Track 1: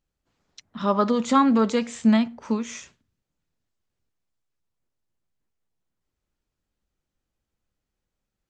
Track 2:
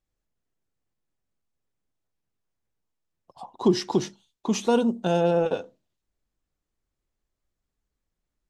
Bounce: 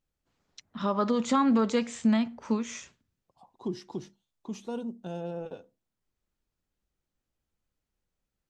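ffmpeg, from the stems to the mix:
ffmpeg -i stem1.wav -i stem2.wav -filter_complex "[0:a]volume=-3dB[link_01];[1:a]lowshelf=frequency=330:gain=7.5,volume=-17.5dB[link_02];[link_01][link_02]amix=inputs=2:normalize=0,alimiter=limit=-16dB:level=0:latency=1:release=127" out.wav

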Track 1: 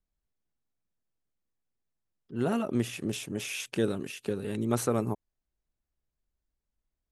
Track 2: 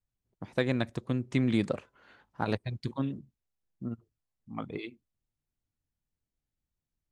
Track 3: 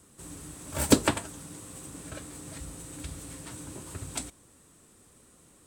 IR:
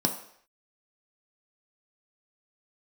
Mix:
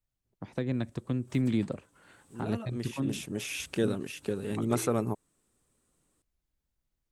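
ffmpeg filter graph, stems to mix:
-filter_complex "[0:a]volume=-0.5dB,afade=type=in:start_time=2.72:duration=0.6:silence=0.334965[link_01];[1:a]acrossover=split=370[link_02][link_03];[link_03]acompressor=threshold=-40dB:ratio=4[link_04];[link_02][link_04]amix=inputs=2:normalize=0,volume=0dB,asplit=2[link_05][link_06];[2:a]adelay=550,volume=-16dB[link_07];[link_06]apad=whole_len=274283[link_08];[link_07][link_08]sidechaincompress=threshold=-37dB:ratio=8:attack=5.8:release=770[link_09];[link_01][link_05][link_09]amix=inputs=3:normalize=0"

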